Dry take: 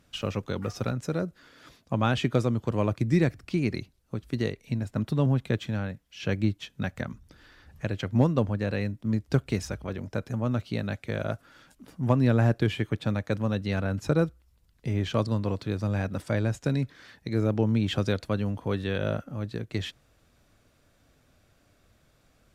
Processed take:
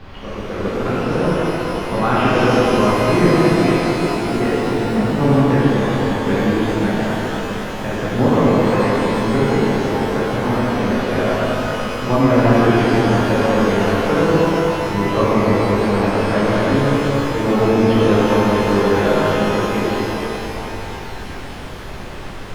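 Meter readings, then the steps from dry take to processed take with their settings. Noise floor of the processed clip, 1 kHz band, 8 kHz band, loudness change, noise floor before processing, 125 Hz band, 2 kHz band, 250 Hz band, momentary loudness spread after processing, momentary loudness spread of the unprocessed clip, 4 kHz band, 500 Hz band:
-29 dBFS, +19.0 dB, +13.5 dB, +12.0 dB, -65 dBFS, +6.5 dB, +15.0 dB, +12.5 dB, 11 LU, 10 LU, +12.0 dB, +15.5 dB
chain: Wiener smoothing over 41 samples; bell 73 Hz -12 dB 1.1 oct; notch 590 Hz, Q 12; AGC gain up to 11.5 dB; overdrive pedal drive 12 dB, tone 1500 Hz, clips at -2 dBFS; added noise pink -35 dBFS; air absorption 300 m; shimmer reverb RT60 3.9 s, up +12 st, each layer -8 dB, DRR -10.5 dB; gain -5.5 dB

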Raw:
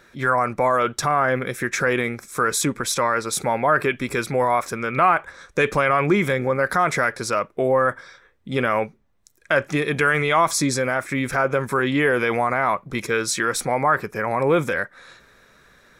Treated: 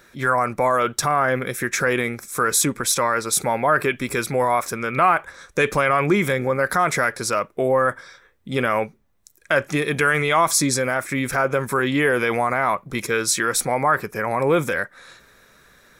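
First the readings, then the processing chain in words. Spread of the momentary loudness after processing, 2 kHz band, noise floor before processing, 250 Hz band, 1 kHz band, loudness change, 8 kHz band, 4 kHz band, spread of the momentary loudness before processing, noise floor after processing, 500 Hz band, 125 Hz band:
6 LU, +0.5 dB, -57 dBFS, 0.0 dB, 0.0 dB, +0.5 dB, +4.5 dB, +2.0 dB, 6 LU, -56 dBFS, 0.0 dB, 0.0 dB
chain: high shelf 8200 Hz +10 dB

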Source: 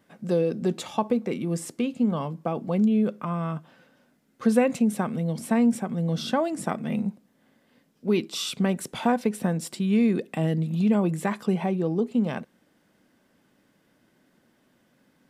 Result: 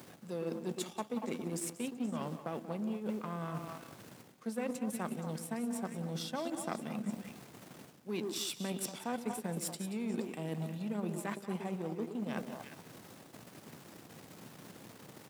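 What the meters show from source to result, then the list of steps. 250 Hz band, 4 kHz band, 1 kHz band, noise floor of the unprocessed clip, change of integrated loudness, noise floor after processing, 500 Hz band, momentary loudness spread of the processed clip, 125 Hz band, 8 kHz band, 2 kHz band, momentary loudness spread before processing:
-14.0 dB, -8.0 dB, -11.5 dB, -66 dBFS, -13.0 dB, -56 dBFS, -13.0 dB, 15 LU, -13.5 dB, -4.0 dB, -10.5 dB, 8 LU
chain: on a send: delay with a stepping band-pass 0.118 s, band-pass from 320 Hz, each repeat 1.4 oct, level -4 dB; on the sum: added noise brown -38 dBFS; high shelf 5500 Hz +10.5 dB; reverse; compressor 6:1, threshold -33 dBFS, peak gain reduction 18 dB; reverse; echo 0.182 s -11.5 dB; power-law curve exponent 1.4; HPF 140 Hz 24 dB/oct; gain +1 dB

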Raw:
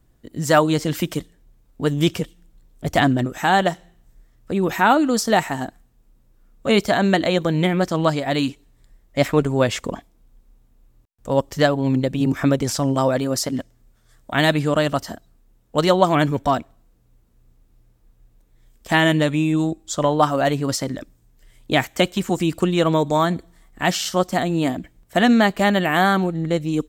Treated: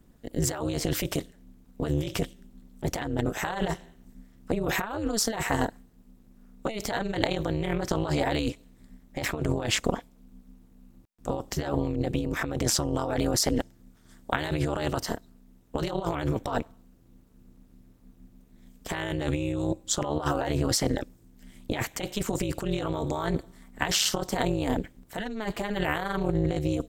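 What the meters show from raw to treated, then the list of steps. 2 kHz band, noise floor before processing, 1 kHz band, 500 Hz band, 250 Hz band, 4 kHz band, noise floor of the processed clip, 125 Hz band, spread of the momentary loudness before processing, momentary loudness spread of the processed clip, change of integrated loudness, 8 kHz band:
-10.5 dB, -58 dBFS, -12.0 dB, -10.0 dB, -10.0 dB, -6.5 dB, -58 dBFS, -7.0 dB, 12 LU, 10 LU, -9.5 dB, -0.5 dB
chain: negative-ratio compressor -24 dBFS, ratio -1; AM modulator 220 Hz, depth 95%

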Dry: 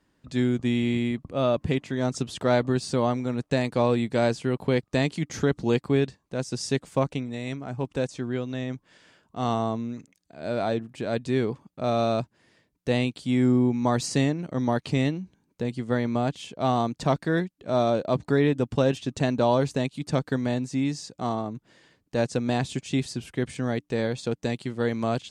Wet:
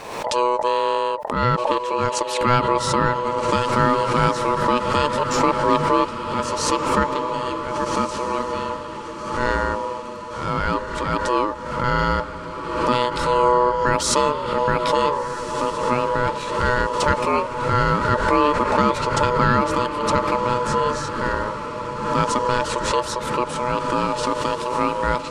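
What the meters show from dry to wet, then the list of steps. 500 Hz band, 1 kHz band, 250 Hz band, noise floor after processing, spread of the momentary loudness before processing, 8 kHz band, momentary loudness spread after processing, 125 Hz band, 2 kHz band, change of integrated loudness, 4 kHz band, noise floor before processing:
+5.0 dB, +13.5 dB, -1.0 dB, -31 dBFS, 9 LU, +9.5 dB, 7 LU, +0.5 dB, +9.5 dB, +5.5 dB, +7.5 dB, -73 dBFS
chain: ring modulator 740 Hz; diffused feedback echo 1.501 s, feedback 51%, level -8 dB; backwards sustainer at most 50 dB/s; gain +6.5 dB

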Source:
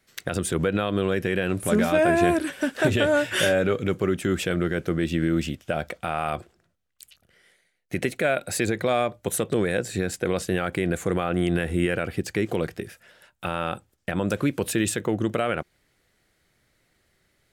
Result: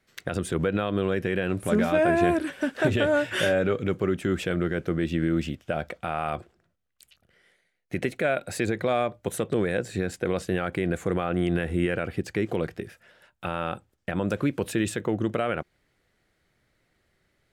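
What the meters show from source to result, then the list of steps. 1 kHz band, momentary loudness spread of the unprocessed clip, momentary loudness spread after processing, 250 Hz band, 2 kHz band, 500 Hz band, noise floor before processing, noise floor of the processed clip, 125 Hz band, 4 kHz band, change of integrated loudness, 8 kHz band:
-2.0 dB, 9 LU, 9 LU, -1.5 dB, -2.5 dB, -1.5 dB, -69 dBFS, -72 dBFS, -1.5 dB, -4.5 dB, -2.0 dB, -8.0 dB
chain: high shelf 4600 Hz -8.5 dB; gain -1.5 dB

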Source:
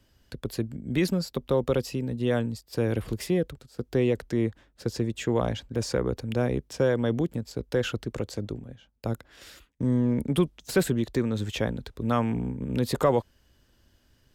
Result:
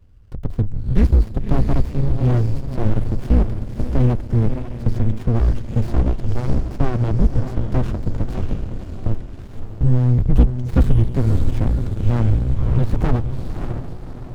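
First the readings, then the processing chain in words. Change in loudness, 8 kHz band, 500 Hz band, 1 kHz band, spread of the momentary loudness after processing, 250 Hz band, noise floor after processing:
+7.5 dB, n/a, -2.0 dB, +2.0 dB, 11 LU, +4.0 dB, -33 dBFS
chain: high shelf 3300 Hz +11.5 dB; notches 50/100/150 Hz; frequency shift -120 Hz; in parallel at -3 dB: hard clip -22 dBFS, distortion -10 dB; on the sum: tilt -3.5 dB/oct; on a send: diffused feedback echo 0.583 s, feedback 44%, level -8 dB; on the sum: running maximum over 65 samples; gain -3 dB

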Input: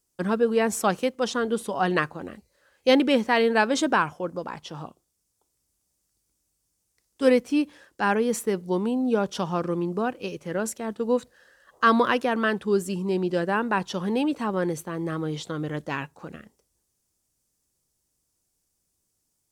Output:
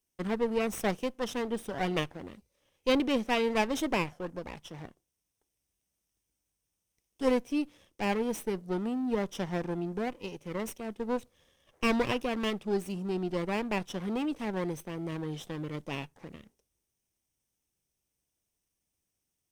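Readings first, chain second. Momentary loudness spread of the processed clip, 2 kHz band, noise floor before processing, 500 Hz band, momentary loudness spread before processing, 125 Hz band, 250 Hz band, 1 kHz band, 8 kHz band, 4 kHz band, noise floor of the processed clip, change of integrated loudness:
12 LU, -9.0 dB, -76 dBFS, -7.5 dB, 12 LU, -5.0 dB, -6.5 dB, -9.5 dB, -8.5 dB, -5.5 dB, -84 dBFS, -7.5 dB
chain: minimum comb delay 0.33 ms; gain -7 dB

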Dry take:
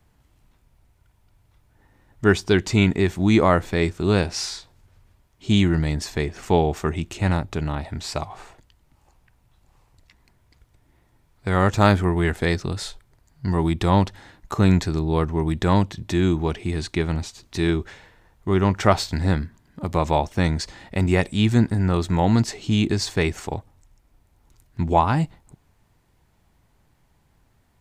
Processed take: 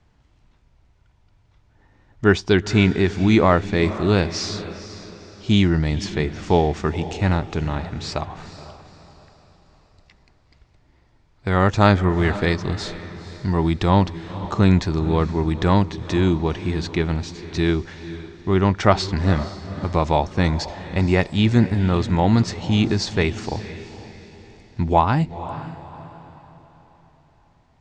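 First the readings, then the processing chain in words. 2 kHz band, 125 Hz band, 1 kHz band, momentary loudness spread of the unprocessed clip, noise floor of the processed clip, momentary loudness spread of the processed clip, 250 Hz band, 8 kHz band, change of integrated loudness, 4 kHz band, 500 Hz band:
+1.5 dB, +1.5 dB, +1.5 dB, 12 LU, -58 dBFS, 17 LU, +1.5 dB, -2.5 dB, +1.5 dB, +1.5 dB, +1.5 dB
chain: LPF 6400 Hz 24 dB/oct; on a send: diffused feedback echo 0.487 s, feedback 41%, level -13.5 dB; on the sum: gain +1.5 dB

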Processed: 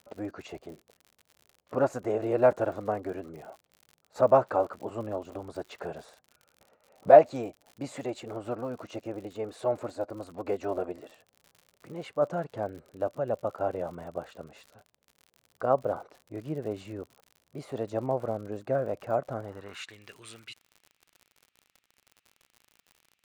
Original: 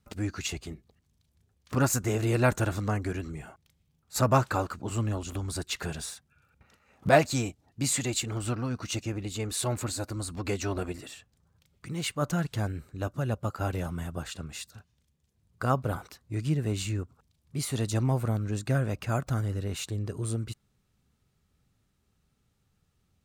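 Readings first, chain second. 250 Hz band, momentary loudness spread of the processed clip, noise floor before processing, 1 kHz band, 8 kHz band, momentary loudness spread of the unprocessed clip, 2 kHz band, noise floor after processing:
-5.0 dB, 21 LU, -73 dBFS, +2.5 dB, under -20 dB, 14 LU, -7.5 dB, -80 dBFS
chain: band-pass sweep 590 Hz -> 2500 Hz, 19.38–20.01; crackle 72/s -50 dBFS; gain +8 dB

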